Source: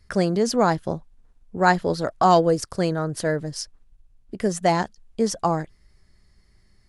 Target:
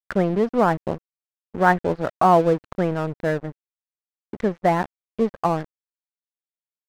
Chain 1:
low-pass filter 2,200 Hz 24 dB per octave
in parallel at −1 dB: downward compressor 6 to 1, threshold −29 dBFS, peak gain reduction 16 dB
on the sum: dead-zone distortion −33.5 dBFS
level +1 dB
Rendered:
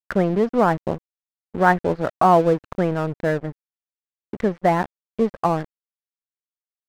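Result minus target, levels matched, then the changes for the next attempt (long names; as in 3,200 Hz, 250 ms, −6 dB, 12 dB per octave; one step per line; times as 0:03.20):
downward compressor: peak gain reduction −6 dB
change: downward compressor 6 to 1, threshold −36.5 dBFS, peak gain reduction 22 dB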